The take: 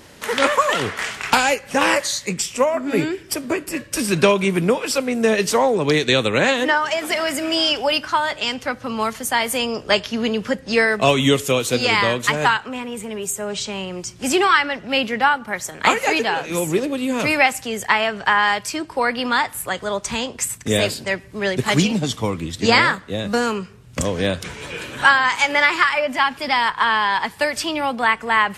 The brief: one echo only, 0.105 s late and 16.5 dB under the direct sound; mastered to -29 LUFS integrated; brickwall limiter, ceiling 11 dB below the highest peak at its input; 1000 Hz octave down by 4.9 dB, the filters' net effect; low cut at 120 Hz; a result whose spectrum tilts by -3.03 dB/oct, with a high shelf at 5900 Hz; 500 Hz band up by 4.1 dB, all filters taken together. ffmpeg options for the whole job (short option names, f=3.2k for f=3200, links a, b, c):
-af "highpass=120,equalizer=f=500:t=o:g=7,equalizer=f=1k:t=o:g=-8.5,highshelf=f=5.9k:g=4,alimiter=limit=-10dB:level=0:latency=1,aecho=1:1:105:0.15,volume=-8.5dB"